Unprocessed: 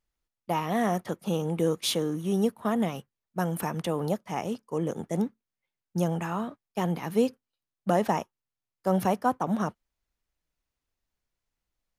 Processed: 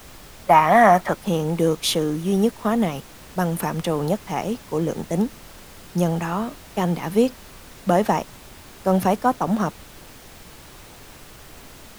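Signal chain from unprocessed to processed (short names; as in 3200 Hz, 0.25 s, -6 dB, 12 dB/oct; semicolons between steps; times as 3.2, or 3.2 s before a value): spectral gain 0.46–1.17, 550–2500 Hz +10 dB; added noise pink -49 dBFS; gain +6 dB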